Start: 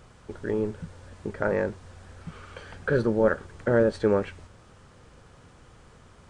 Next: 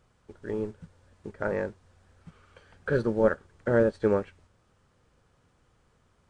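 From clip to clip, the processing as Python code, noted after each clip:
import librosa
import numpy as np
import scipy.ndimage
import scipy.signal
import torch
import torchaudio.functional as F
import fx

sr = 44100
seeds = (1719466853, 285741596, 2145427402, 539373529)

y = fx.upward_expand(x, sr, threshold_db=-44.0, expansion=1.5)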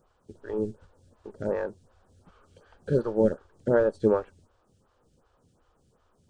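y = fx.peak_eq(x, sr, hz=2100.0, db=-11.0, octaves=0.71)
y = fx.stagger_phaser(y, sr, hz=2.7)
y = F.gain(torch.from_numpy(y), 4.0).numpy()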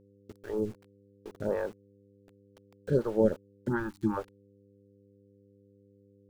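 y = np.where(np.abs(x) >= 10.0 ** (-46.0 / 20.0), x, 0.0)
y = fx.dmg_buzz(y, sr, base_hz=100.0, harmonics=5, level_db=-59.0, tilt_db=-1, odd_only=False)
y = fx.spec_box(y, sr, start_s=3.68, length_s=0.49, low_hz=370.0, high_hz=780.0, gain_db=-28)
y = F.gain(torch.from_numpy(y), -2.0).numpy()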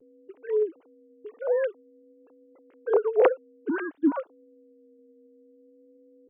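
y = fx.sine_speech(x, sr)
y = fx.vibrato(y, sr, rate_hz=0.54, depth_cents=26.0)
y = F.gain(torch.from_numpy(y), 5.0).numpy()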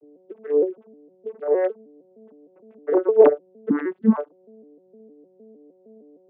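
y = fx.vocoder_arp(x, sr, chord='major triad', root=50, every_ms=154)
y = F.gain(torch.from_numpy(y), 6.5).numpy()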